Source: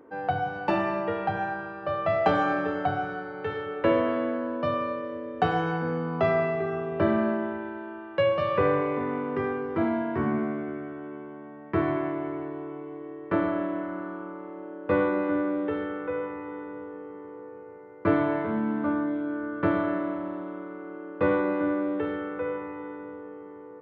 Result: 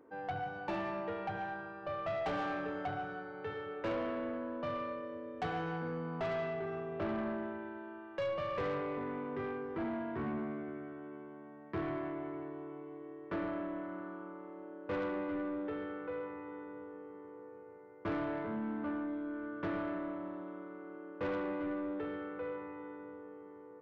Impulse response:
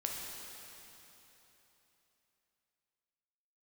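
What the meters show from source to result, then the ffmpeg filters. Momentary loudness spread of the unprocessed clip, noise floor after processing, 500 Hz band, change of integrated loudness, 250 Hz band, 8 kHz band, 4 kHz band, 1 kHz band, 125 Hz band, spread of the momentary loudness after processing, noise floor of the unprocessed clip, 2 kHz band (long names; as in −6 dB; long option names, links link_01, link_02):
15 LU, −52 dBFS, −11.5 dB, −11.5 dB, −11.0 dB, can't be measured, −9.0 dB, −11.5 dB, −11.5 dB, 12 LU, −43 dBFS, −10.5 dB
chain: -af "asoftclip=type=tanh:threshold=-23dB,volume=-8.5dB"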